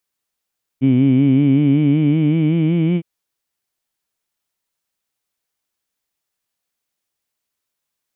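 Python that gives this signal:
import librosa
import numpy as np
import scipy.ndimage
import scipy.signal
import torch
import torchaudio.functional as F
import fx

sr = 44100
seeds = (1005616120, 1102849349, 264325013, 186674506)

y = fx.vowel(sr, seeds[0], length_s=2.21, word='heed', hz=128.0, glide_st=5.0, vibrato_hz=5.3, vibrato_st=0.9)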